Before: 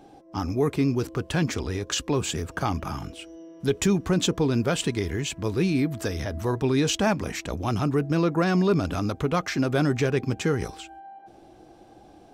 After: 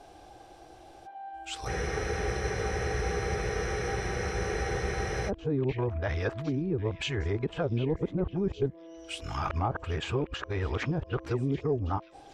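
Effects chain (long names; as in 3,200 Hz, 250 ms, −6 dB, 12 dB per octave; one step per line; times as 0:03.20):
played backwards from end to start
treble cut that deepens with the level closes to 430 Hz, closed at −20.5 dBFS
parametric band 220 Hz −14 dB 1.6 octaves
on a send: echo through a band-pass that steps 758 ms, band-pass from 2,700 Hz, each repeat 0.7 octaves, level −12 dB
on the sum: frozen spectrum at 0:01.69, 3.59 s
level +4 dB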